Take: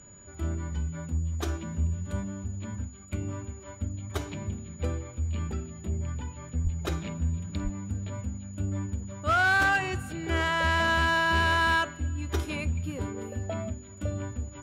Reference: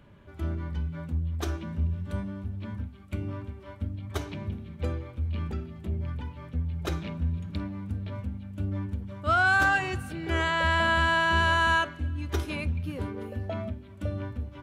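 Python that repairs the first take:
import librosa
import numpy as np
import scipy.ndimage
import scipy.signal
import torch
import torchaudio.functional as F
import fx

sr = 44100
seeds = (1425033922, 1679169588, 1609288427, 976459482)

y = fx.fix_declip(x, sr, threshold_db=-19.0)
y = fx.notch(y, sr, hz=6900.0, q=30.0)
y = fx.highpass(y, sr, hz=140.0, slope=24, at=(6.63, 6.75), fade=0.02)
y = fx.highpass(y, sr, hz=140.0, slope=24, at=(7.63, 7.75), fade=0.02)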